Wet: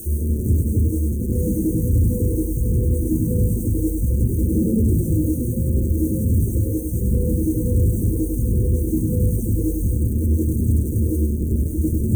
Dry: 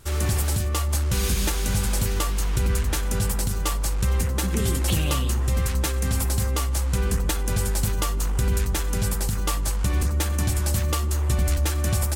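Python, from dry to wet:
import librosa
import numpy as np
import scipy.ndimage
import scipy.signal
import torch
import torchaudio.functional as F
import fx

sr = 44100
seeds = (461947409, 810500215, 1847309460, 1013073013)

p1 = scipy.ndimage.median_filter(x, 9, mode='constant')
p2 = scipy.signal.sosfilt(scipy.signal.butter(4, 54.0, 'highpass', fs=sr, output='sos'), p1)
p3 = fx.rev_gated(p2, sr, seeds[0], gate_ms=230, shape='rising', drr_db=-7.0)
p4 = fx.quant_dither(p3, sr, seeds[1], bits=6, dither='triangular')
p5 = fx.dereverb_blind(p4, sr, rt60_s=1.8)
p6 = fx.ripple_eq(p5, sr, per_octave=1.9, db=10)
p7 = 10.0 ** (-23.5 / 20.0) * np.tanh(p6 / 10.0 ** (-23.5 / 20.0))
p8 = scipy.signal.sosfilt(scipy.signal.cheby2(4, 40, [740.0, 4800.0], 'bandstop', fs=sr, output='sos'), p7)
p9 = fx.high_shelf(p8, sr, hz=6200.0, db=-7.5)
p10 = p9 + fx.echo_single(p9, sr, ms=101, db=-4.0, dry=0)
y = p10 * 10.0 ** (8.5 / 20.0)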